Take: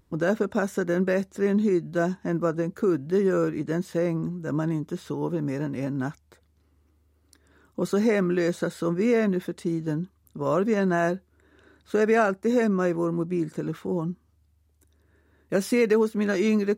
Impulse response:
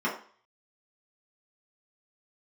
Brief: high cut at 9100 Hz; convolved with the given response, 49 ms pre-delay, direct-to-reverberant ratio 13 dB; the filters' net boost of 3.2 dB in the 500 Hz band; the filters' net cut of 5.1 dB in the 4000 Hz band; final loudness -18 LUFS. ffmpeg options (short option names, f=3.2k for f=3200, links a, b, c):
-filter_complex "[0:a]lowpass=9.1k,equalizer=f=500:t=o:g=4,equalizer=f=4k:t=o:g=-6.5,asplit=2[a][b];[1:a]atrim=start_sample=2205,adelay=49[c];[b][c]afir=irnorm=-1:irlink=0,volume=-23.5dB[d];[a][d]amix=inputs=2:normalize=0,volume=5.5dB"